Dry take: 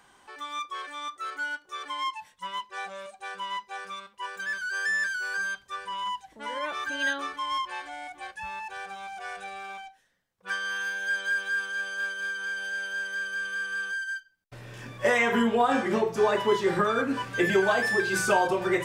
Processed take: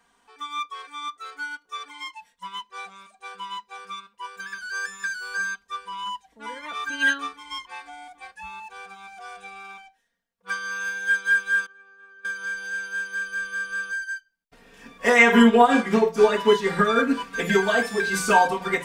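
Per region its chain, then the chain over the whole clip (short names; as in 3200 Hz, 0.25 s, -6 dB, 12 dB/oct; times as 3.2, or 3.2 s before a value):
11.66–12.25 tape spacing loss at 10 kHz 24 dB + notch 7100 Hz + resonator 130 Hz, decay 0.27 s, mix 90%
whole clip: comb 4.3 ms, depth 98%; dynamic EQ 620 Hz, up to -3 dB, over -36 dBFS, Q 0.89; upward expander 1.5:1, over -44 dBFS; gain +5.5 dB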